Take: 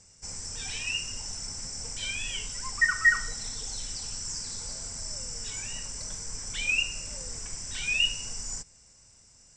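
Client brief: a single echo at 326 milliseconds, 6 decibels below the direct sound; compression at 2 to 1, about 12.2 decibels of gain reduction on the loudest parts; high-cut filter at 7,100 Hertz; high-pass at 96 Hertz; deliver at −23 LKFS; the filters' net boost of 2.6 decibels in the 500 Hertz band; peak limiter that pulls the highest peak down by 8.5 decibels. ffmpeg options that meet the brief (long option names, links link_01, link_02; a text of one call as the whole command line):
ffmpeg -i in.wav -af "highpass=96,lowpass=7100,equalizer=frequency=500:width_type=o:gain=3,acompressor=threshold=-40dB:ratio=2,alimiter=level_in=8dB:limit=-24dB:level=0:latency=1,volume=-8dB,aecho=1:1:326:0.501,volume=15.5dB" out.wav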